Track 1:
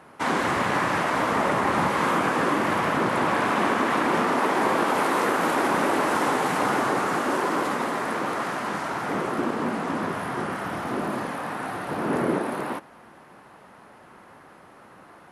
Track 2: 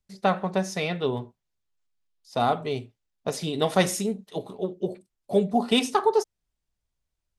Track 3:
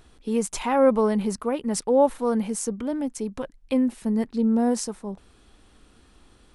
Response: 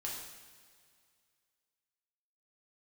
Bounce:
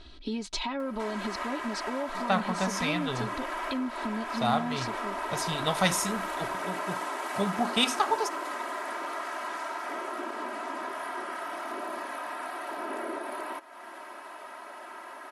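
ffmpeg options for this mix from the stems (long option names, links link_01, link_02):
-filter_complex "[0:a]highpass=510,acompressor=mode=upward:threshold=-28dB:ratio=2.5,adelay=800,volume=-6.5dB[link_01];[1:a]equalizer=frequency=370:width_type=o:width=1.4:gain=-13.5,adelay=2050,volume=0.5dB[link_02];[2:a]alimiter=limit=-17.5dB:level=0:latency=1:release=109,lowpass=frequency=4100:width_type=q:width=3.8,volume=0dB[link_03];[link_01][link_03]amix=inputs=2:normalize=0,aecho=1:1:3.1:0.88,acompressor=threshold=-31dB:ratio=4,volume=0dB[link_04];[link_02][link_04]amix=inputs=2:normalize=0"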